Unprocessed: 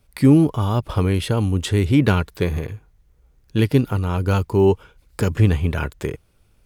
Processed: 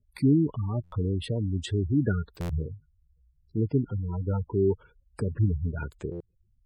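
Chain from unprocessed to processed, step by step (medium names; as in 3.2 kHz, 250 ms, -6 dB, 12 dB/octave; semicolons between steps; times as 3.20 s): spectral gate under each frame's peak -15 dB strong; 2.51–3.57 s: doubling 13 ms -2.5 dB; buffer glitch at 0.83/2.40/6.11 s, samples 512, times 7; trim -8.5 dB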